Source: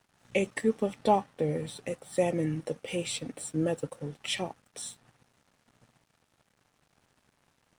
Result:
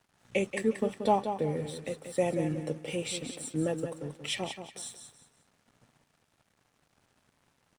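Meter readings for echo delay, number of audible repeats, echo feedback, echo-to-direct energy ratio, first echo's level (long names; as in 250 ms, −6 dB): 181 ms, 3, 29%, −8.0 dB, −8.5 dB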